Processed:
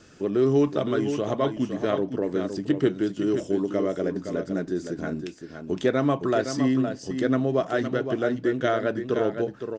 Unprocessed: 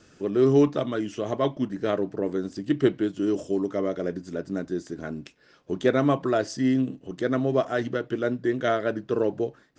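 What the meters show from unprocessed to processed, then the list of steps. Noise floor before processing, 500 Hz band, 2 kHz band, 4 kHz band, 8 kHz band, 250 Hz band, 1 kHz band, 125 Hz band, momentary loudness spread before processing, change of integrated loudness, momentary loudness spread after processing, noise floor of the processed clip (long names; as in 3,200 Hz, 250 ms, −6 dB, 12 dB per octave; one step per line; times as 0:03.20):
−58 dBFS, +0.5 dB, +0.5 dB, +1.0 dB, can't be measured, +0.5 dB, +0.5 dB, +0.5 dB, 10 LU, +0.5 dB, 7 LU, −44 dBFS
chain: downward compressor 1.5 to 1, threshold −28 dBFS, peak gain reduction 5 dB
single-tap delay 514 ms −8 dB
level +3 dB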